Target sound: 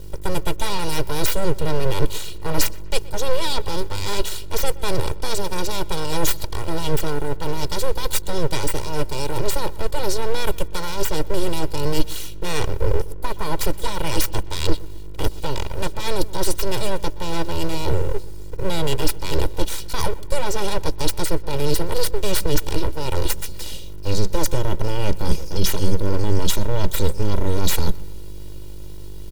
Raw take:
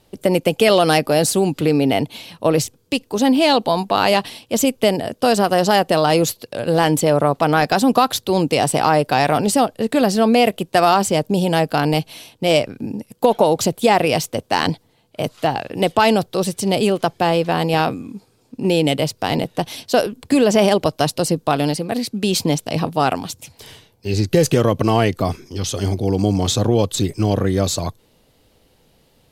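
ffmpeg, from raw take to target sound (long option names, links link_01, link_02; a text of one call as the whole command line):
ffmpeg -i in.wav -filter_complex "[0:a]areverse,acompressor=threshold=-24dB:ratio=10,areverse,asuperstop=centerf=1300:order=4:qfactor=0.51,acrusher=bits=9:mix=0:aa=0.000001,lowshelf=frequency=160:gain=11,aeval=exprs='val(0)+0.0141*(sin(2*PI*50*n/s)+sin(2*PI*2*50*n/s)/2+sin(2*PI*3*50*n/s)/3+sin(2*PI*4*50*n/s)/4+sin(2*PI*5*50*n/s)/5)':channel_layout=same,highpass=frequency=76:width=0.5412,highpass=frequency=76:width=1.3066,aeval=exprs='abs(val(0))':channel_layout=same,equalizer=frequency=460:width=0.54:gain=-5.5,aecho=1:1:2.1:0.7,asplit=2[link_01][link_02];[link_02]adelay=123,lowpass=frequency=3100:poles=1,volume=-20dB,asplit=2[link_03][link_04];[link_04]adelay=123,lowpass=frequency=3100:poles=1,volume=0.46,asplit=2[link_05][link_06];[link_06]adelay=123,lowpass=frequency=3100:poles=1,volume=0.46[link_07];[link_01][link_03][link_05][link_07]amix=inputs=4:normalize=0,volume=8.5dB" out.wav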